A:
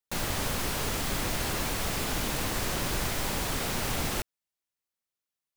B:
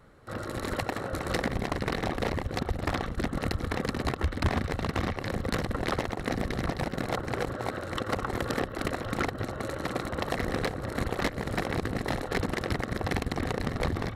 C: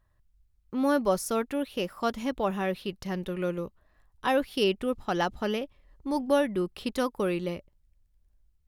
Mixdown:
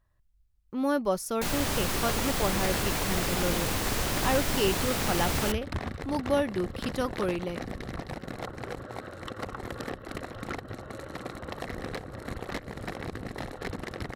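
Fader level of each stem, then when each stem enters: +1.0 dB, -6.5 dB, -2.0 dB; 1.30 s, 1.30 s, 0.00 s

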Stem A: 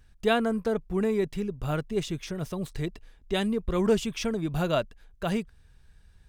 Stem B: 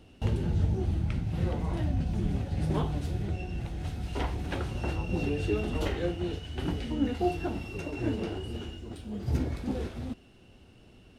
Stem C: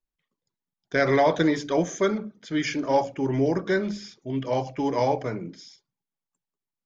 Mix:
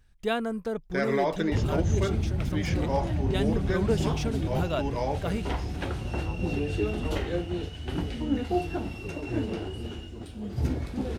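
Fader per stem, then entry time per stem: -4.0 dB, +1.0 dB, -7.0 dB; 0.00 s, 1.30 s, 0.00 s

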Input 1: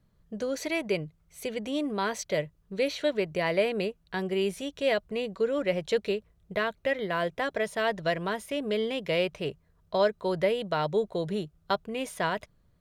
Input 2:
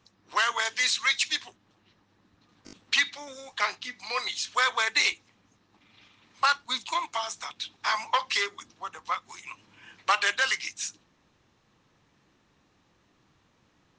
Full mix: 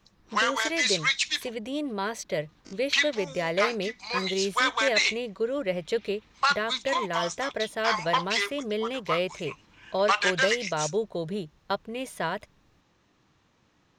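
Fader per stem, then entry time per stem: -1.0 dB, 0.0 dB; 0.00 s, 0.00 s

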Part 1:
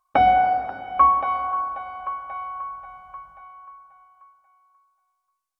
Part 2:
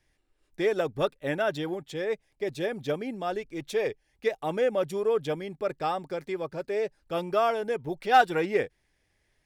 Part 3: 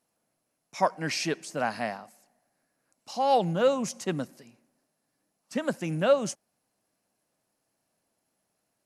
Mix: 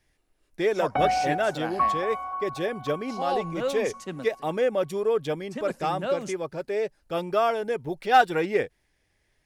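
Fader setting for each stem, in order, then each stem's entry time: -8.0 dB, +1.5 dB, -5.5 dB; 0.80 s, 0.00 s, 0.00 s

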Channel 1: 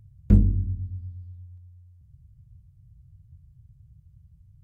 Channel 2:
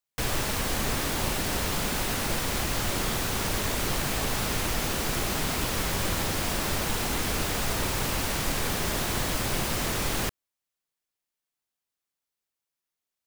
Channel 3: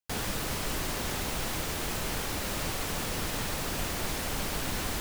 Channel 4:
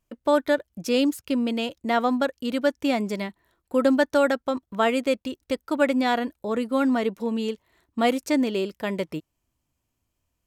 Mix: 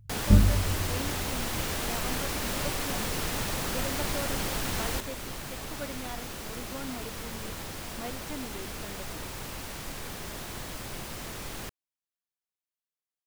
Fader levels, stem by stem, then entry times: -2.0 dB, -10.5 dB, +0.5 dB, -18.5 dB; 0.00 s, 1.40 s, 0.00 s, 0.00 s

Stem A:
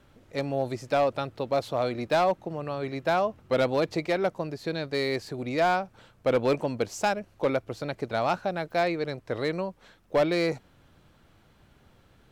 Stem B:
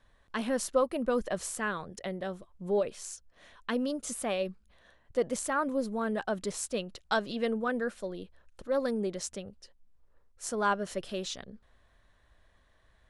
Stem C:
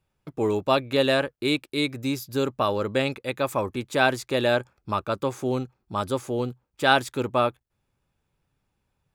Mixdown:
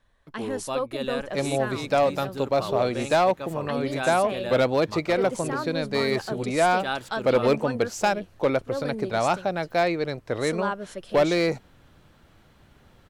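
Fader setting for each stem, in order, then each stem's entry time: +3.0 dB, -1.5 dB, -10.0 dB; 1.00 s, 0.00 s, 0.00 s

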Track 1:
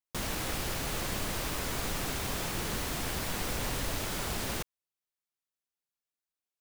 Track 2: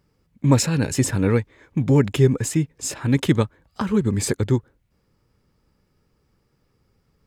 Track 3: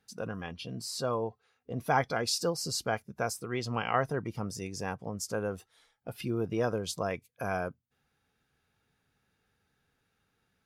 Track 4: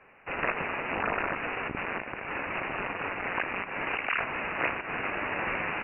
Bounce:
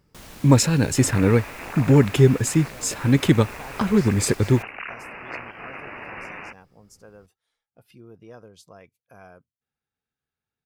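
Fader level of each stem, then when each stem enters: -9.0 dB, +1.5 dB, -14.5 dB, -5.5 dB; 0.00 s, 0.00 s, 1.70 s, 0.70 s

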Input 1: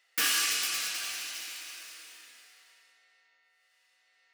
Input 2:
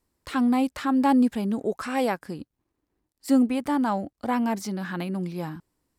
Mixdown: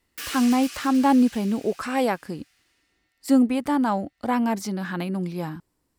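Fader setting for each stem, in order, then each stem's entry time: -7.5 dB, +2.0 dB; 0.00 s, 0.00 s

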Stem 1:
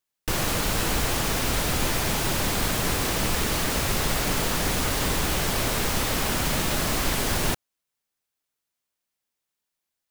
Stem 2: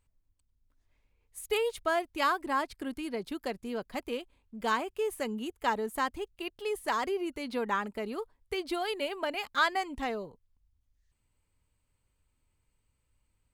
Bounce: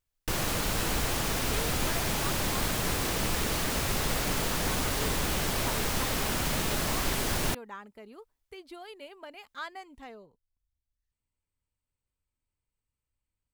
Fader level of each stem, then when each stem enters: -4.5 dB, -12.5 dB; 0.00 s, 0.00 s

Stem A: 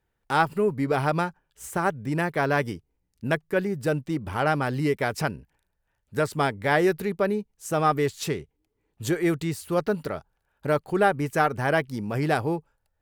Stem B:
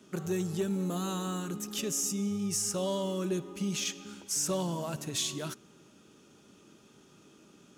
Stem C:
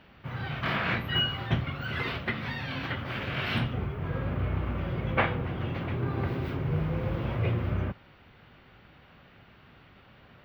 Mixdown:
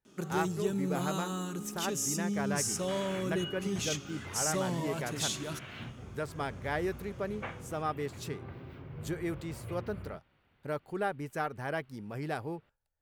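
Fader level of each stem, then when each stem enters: -12.0 dB, -1.5 dB, -15.0 dB; 0.00 s, 0.05 s, 2.25 s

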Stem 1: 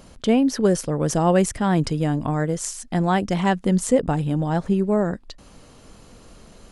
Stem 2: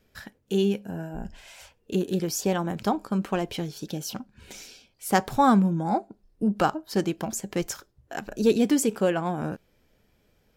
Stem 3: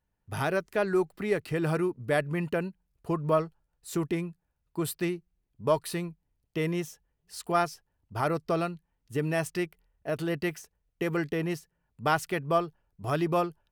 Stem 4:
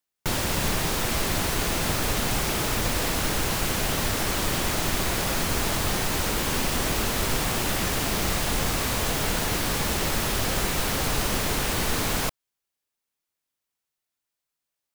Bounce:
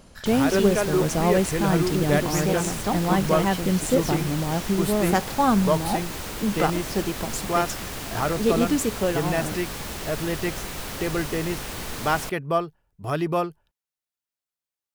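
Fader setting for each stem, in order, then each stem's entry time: -3.5 dB, -1.0 dB, +2.5 dB, -7.5 dB; 0.00 s, 0.00 s, 0.00 s, 0.00 s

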